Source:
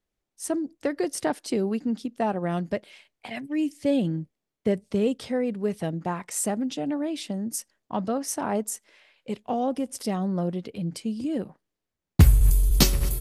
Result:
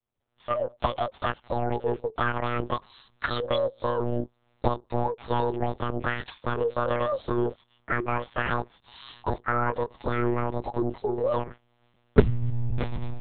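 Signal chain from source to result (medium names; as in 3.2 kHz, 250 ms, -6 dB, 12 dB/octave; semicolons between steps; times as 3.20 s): rotating-head pitch shifter +10.5 st; recorder AGC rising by 49 dB/s; dynamic bell 1.7 kHz, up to +4 dB, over -32 dBFS, Q 0.99; monotone LPC vocoder at 8 kHz 120 Hz; trim -8.5 dB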